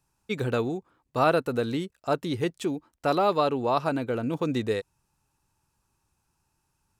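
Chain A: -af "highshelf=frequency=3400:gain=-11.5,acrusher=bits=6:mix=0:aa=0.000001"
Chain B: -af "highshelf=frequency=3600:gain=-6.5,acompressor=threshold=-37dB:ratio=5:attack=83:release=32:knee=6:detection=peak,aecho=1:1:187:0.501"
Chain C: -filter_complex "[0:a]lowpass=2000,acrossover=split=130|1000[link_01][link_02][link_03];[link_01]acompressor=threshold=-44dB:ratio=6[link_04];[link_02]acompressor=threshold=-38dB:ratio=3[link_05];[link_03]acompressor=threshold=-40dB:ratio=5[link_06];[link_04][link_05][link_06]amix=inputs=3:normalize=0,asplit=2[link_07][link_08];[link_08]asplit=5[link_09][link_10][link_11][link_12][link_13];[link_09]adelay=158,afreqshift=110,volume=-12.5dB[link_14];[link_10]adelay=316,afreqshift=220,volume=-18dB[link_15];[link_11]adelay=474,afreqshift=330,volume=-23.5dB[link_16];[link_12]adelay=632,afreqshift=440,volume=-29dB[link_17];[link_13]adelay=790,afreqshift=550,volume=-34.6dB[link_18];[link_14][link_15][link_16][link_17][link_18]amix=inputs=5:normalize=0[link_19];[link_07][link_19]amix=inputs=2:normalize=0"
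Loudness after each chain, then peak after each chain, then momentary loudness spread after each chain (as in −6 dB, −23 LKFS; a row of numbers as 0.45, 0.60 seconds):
−28.0, −33.0, −37.0 LKFS; −10.5, −16.5, −20.0 dBFS; 8, 6, 6 LU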